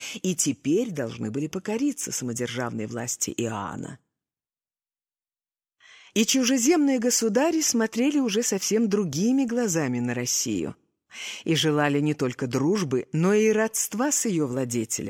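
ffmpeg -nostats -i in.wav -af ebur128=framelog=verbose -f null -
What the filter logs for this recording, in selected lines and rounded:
Integrated loudness:
  I:         -24.4 LUFS
  Threshold: -34.7 LUFS
Loudness range:
  LRA:         9.3 LU
  Threshold: -45.2 LUFS
  LRA low:   -31.8 LUFS
  LRA high:  -22.5 LUFS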